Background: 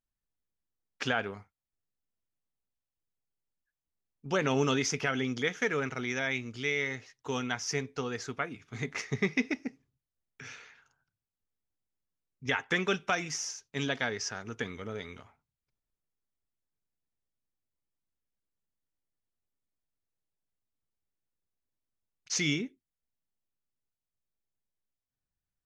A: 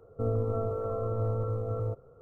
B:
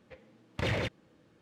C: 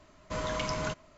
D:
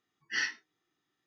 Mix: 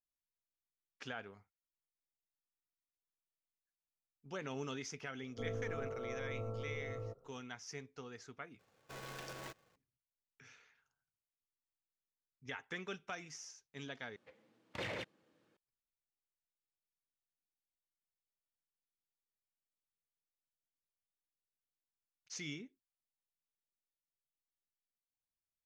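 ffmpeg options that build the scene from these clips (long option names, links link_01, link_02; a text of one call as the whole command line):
ffmpeg -i bed.wav -i cue0.wav -i cue1.wav -i cue2.wav -filter_complex "[0:a]volume=-15dB[link_01];[1:a]equalizer=frequency=73:width_type=o:width=0.77:gain=-12.5[link_02];[3:a]aeval=exprs='val(0)*sgn(sin(2*PI*490*n/s))':channel_layout=same[link_03];[2:a]highpass=frequency=330:poles=1[link_04];[link_01]asplit=3[link_05][link_06][link_07];[link_05]atrim=end=8.594[link_08];[link_03]atrim=end=1.17,asetpts=PTS-STARTPTS,volume=-15.5dB[link_09];[link_06]atrim=start=9.756:end=14.164[link_10];[link_04]atrim=end=1.41,asetpts=PTS-STARTPTS,volume=-8dB[link_11];[link_07]atrim=start=15.566[link_12];[link_02]atrim=end=2.21,asetpts=PTS-STARTPTS,volume=-10.5dB,afade=type=in:duration=0.004:curve=hsin,afade=type=out:start_time=2.206:duration=0.004:curve=hsin,adelay=5190[link_13];[link_08][link_09]acrossfade=duration=0.004:curve1=hsin:curve2=hsin[link_14];[link_14][link_10]acrossfade=duration=0.004:curve1=hsin:curve2=hsin[link_15];[link_15][link_11]acrossfade=duration=0.004:curve1=hsin:curve2=hsin[link_16];[link_16][link_12]acrossfade=duration=0.004:curve1=hsin:curve2=hsin[link_17];[link_17][link_13]amix=inputs=2:normalize=0" out.wav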